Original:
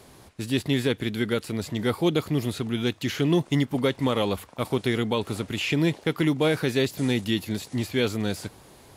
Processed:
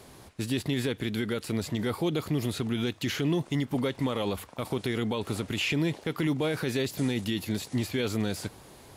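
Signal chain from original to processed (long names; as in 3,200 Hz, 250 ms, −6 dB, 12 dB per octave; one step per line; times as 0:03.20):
brickwall limiter −18.5 dBFS, peak gain reduction 7.5 dB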